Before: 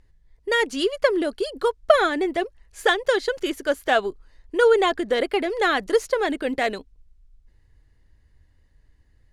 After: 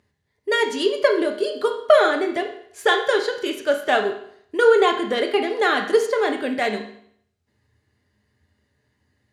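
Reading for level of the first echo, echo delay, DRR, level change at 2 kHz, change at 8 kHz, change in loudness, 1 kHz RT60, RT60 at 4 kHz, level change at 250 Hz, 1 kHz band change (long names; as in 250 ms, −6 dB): no echo audible, no echo audible, 2.5 dB, +1.5 dB, +0.5 dB, +2.0 dB, 0.65 s, 0.65 s, +0.5 dB, +2.0 dB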